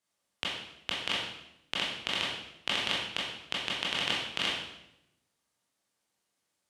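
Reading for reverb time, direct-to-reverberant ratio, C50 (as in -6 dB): 0.80 s, -6.0 dB, 1.5 dB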